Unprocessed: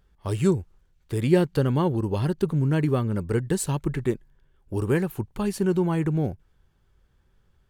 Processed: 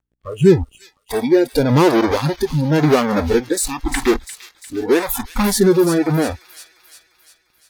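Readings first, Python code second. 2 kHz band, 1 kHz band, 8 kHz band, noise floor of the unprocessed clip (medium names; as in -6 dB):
+12.0 dB, +12.0 dB, +12.5 dB, -65 dBFS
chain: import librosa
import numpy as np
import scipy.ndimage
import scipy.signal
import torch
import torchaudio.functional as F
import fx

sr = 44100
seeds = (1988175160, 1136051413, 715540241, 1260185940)

p1 = fx.add_hum(x, sr, base_hz=60, snr_db=34)
p2 = fx.dynamic_eq(p1, sr, hz=400.0, q=3.5, threshold_db=-37.0, ratio=4.0, max_db=5)
p3 = fx.fuzz(p2, sr, gain_db=47.0, gate_db=-50.0)
p4 = p2 + F.gain(torch.from_numpy(p3), -6.0).numpy()
p5 = fx.rotary(p4, sr, hz=0.9)
p6 = fx.noise_reduce_blind(p5, sr, reduce_db=25)
p7 = p6 + fx.echo_wet_highpass(p6, sr, ms=349, feedback_pct=55, hz=3100.0, wet_db=-8.5, dry=0)
y = F.gain(torch.from_numpy(p7), 5.0).numpy()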